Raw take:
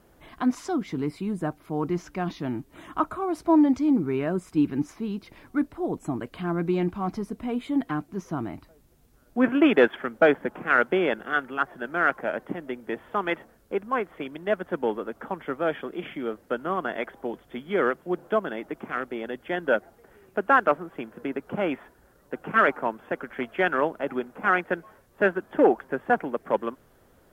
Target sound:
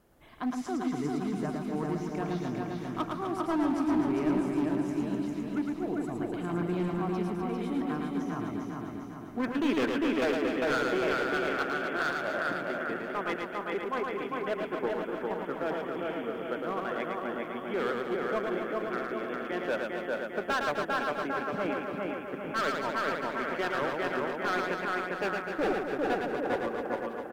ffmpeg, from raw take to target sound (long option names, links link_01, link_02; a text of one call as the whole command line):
ffmpeg -i in.wav -filter_complex "[0:a]asplit=2[link_01][link_02];[link_02]aecho=0:1:400|800|1200|1600|2000|2400|2800:0.668|0.354|0.188|0.0995|0.0527|0.0279|0.0148[link_03];[link_01][link_03]amix=inputs=2:normalize=0,asoftclip=type=hard:threshold=-19dB,asplit=2[link_04][link_05];[link_05]aecho=0:1:110|253|438.9|680.6|994.7:0.631|0.398|0.251|0.158|0.1[link_06];[link_04][link_06]amix=inputs=2:normalize=0,volume=-7dB" out.wav